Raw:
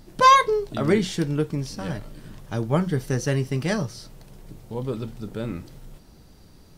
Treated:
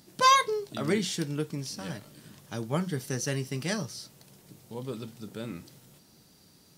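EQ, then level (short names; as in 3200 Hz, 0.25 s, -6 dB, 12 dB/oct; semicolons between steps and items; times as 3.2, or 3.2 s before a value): HPF 150 Hz 12 dB/oct; tone controls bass +4 dB, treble +2 dB; high shelf 2100 Hz +8.5 dB; -8.5 dB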